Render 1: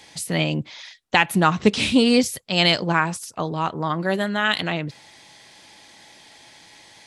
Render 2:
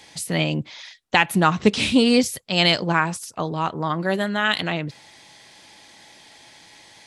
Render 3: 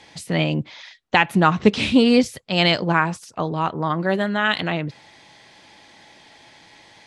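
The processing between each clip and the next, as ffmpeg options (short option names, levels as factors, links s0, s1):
-af anull
-af "aemphasis=mode=reproduction:type=50fm,volume=1.19"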